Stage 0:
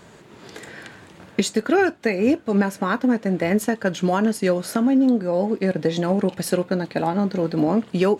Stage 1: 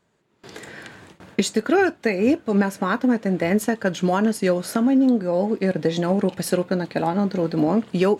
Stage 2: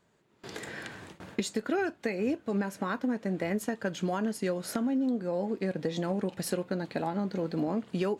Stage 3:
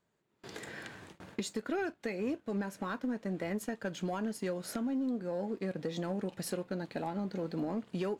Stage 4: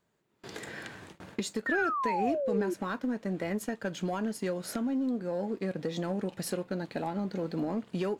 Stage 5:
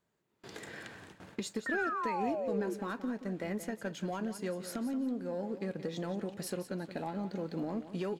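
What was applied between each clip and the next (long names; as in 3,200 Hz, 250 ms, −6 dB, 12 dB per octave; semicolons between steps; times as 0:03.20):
noise gate with hold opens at −34 dBFS
downward compressor 2 to 1, threshold −33 dBFS, peak gain reduction 10.5 dB; level −1.5 dB
leveller curve on the samples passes 1; level −8 dB
sound drawn into the spectrogram fall, 0:01.66–0:02.74, 340–1,900 Hz −34 dBFS; level +3 dB
repeating echo 176 ms, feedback 26%, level −12 dB; level −4.5 dB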